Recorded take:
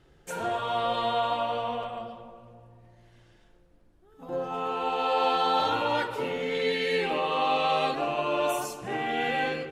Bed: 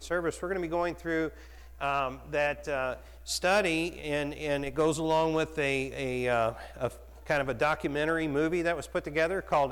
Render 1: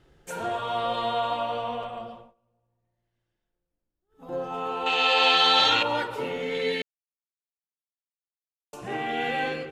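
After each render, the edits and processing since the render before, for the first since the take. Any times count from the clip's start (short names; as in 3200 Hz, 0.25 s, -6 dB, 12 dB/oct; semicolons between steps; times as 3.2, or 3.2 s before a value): 2.15–4.27 dip -23 dB, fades 0.19 s; 4.86–5.83 band shelf 3500 Hz +14 dB 2.5 oct; 6.82–8.73 mute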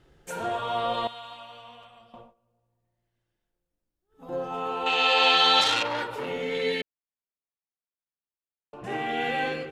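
1.07–2.14 passive tone stack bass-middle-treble 5-5-5; 5.61–6.28 core saturation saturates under 3500 Hz; 6.81–8.84 air absorption 450 m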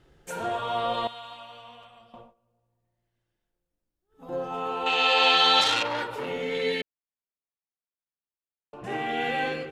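nothing audible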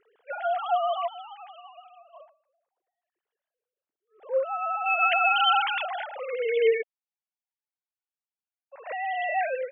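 sine-wave speech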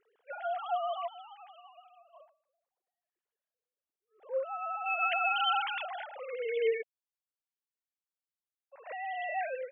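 gain -7.5 dB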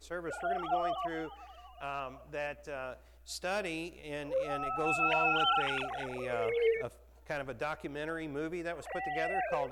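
add bed -9.5 dB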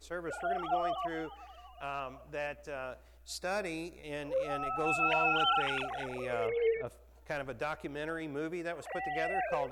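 3.38–4.04 Butterworth band-stop 3000 Hz, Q 3.2; 6.47–6.87 air absorption 320 m; 8.2–8.98 HPF 80 Hz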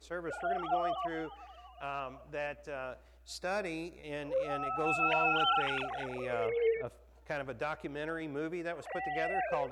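HPF 44 Hz; high shelf 8300 Hz -9.5 dB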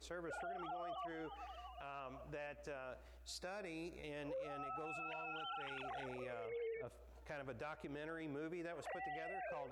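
compressor 3:1, threshold -43 dBFS, peak gain reduction 13 dB; limiter -39 dBFS, peak gain reduction 8.5 dB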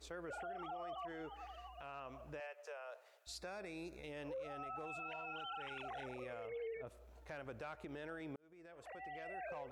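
2.4–3.27 steep high-pass 430 Hz 72 dB/oct; 8.36–9.39 fade in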